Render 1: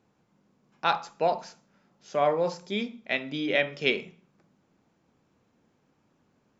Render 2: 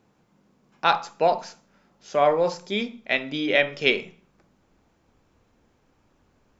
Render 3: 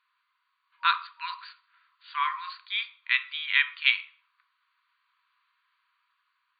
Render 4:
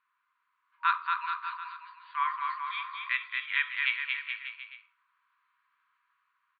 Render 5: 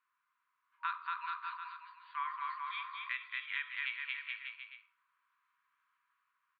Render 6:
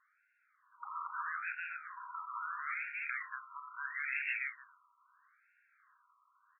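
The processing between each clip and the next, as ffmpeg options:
-af "asubboost=boost=8.5:cutoff=55,volume=1.78"
-af "afftfilt=real='re*between(b*sr/4096,950,4700)':imag='im*between(b*sr/4096,950,4700)':win_size=4096:overlap=0.75,dynaudnorm=f=480:g=5:m=1.58,volume=0.794"
-filter_complex "[0:a]lowpass=1900,asplit=2[s0][s1];[s1]aecho=0:1:230|425.5|591.7|732.9|853:0.631|0.398|0.251|0.158|0.1[s2];[s0][s2]amix=inputs=2:normalize=0,volume=0.891"
-af "acompressor=threshold=0.0316:ratio=3,volume=0.562"
-af "afftfilt=real='re*lt(hypot(re,im),0.0316)':imag='im*lt(hypot(re,im),0.0316)':win_size=1024:overlap=0.75,highpass=f=710:p=1,afftfilt=real='re*between(b*sr/1024,950*pow(2000/950,0.5+0.5*sin(2*PI*0.76*pts/sr))/1.41,950*pow(2000/950,0.5+0.5*sin(2*PI*0.76*pts/sr))*1.41)':imag='im*between(b*sr/1024,950*pow(2000/950,0.5+0.5*sin(2*PI*0.76*pts/sr))/1.41,950*pow(2000/950,0.5+0.5*sin(2*PI*0.76*pts/sr))*1.41)':win_size=1024:overlap=0.75,volume=4.22"

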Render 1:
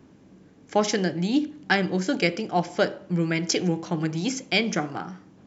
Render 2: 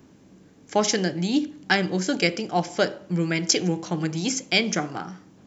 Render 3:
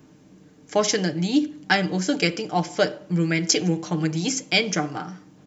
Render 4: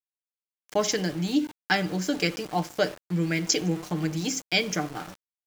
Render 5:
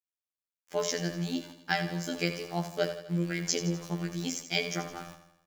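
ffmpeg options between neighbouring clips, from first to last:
-af "highshelf=f=5700:g=10.5"
-af "aecho=1:1:6.6:0.45"
-af "aeval=exprs='val(0)*gte(abs(val(0)),0.0211)':c=same,volume=0.631"
-af "afftfilt=real='hypot(re,im)*cos(PI*b)':imag='0':win_size=2048:overlap=0.75,aecho=1:1:83|166|249|332|415|498:0.282|0.152|0.0822|0.0444|0.024|0.0129,volume=0.75"

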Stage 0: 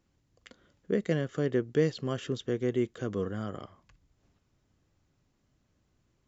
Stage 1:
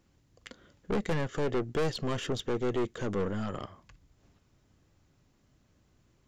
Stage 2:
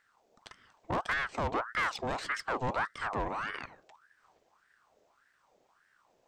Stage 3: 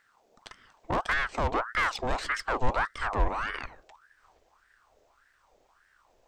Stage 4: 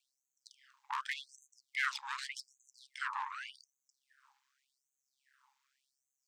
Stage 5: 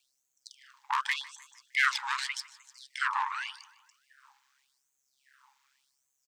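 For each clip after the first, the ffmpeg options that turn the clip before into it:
-af "aeval=exprs='(tanh(44.7*val(0)+0.45)-tanh(0.45))/44.7':c=same,volume=2.24"
-af "aeval=exprs='val(0)*sin(2*PI*1100*n/s+1100*0.55/1.7*sin(2*PI*1.7*n/s))':c=same"
-af "asubboost=boost=9:cutoff=55,volume=1.58"
-af "aeval=exprs='val(0)*sin(2*PI*67*n/s)':c=same,afftfilt=real='re*gte(b*sr/1024,780*pow(6200/780,0.5+0.5*sin(2*PI*0.86*pts/sr)))':imag='im*gte(b*sr/1024,780*pow(6200/780,0.5+0.5*sin(2*PI*0.86*pts/sr)))':win_size=1024:overlap=0.75,volume=0.794"
-af "aecho=1:1:153|306|459|612:0.1|0.048|0.023|0.0111,volume=2.66"

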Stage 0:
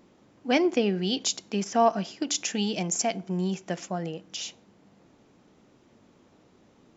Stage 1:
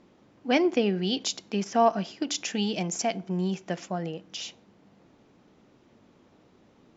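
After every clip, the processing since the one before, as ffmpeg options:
-af "lowpass=5800"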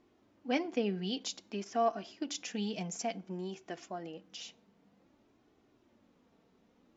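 -af "flanger=delay=2.7:depth=1.8:regen=-33:speed=0.54:shape=sinusoidal,volume=0.531"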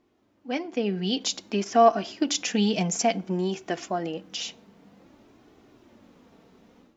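-af "dynaudnorm=f=680:g=3:m=4.47"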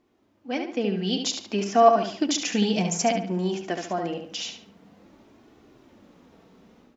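-filter_complex "[0:a]asplit=2[s0][s1];[s1]adelay=71,lowpass=f=4600:p=1,volume=0.531,asplit=2[s2][s3];[s3]adelay=71,lowpass=f=4600:p=1,volume=0.36,asplit=2[s4][s5];[s5]adelay=71,lowpass=f=4600:p=1,volume=0.36,asplit=2[s6][s7];[s7]adelay=71,lowpass=f=4600:p=1,volume=0.36[s8];[s0][s2][s4][s6][s8]amix=inputs=5:normalize=0"

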